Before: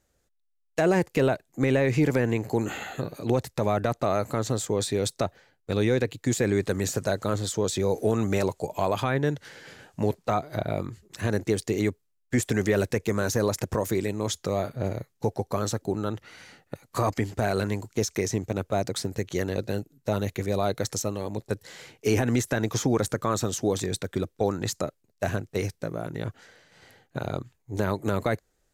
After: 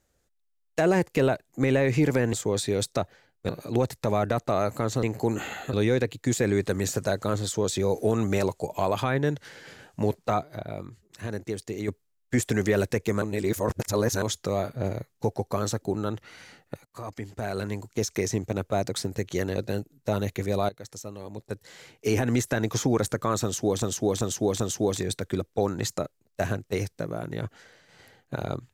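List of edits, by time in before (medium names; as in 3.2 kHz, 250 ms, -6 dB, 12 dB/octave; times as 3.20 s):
2.33–3.03 s: swap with 4.57–5.73 s
10.43–11.88 s: gain -7 dB
13.22–14.22 s: reverse
16.85–18.22 s: fade in, from -19 dB
20.69–22.40 s: fade in linear, from -17 dB
23.43–23.82 s: loop, 4 plays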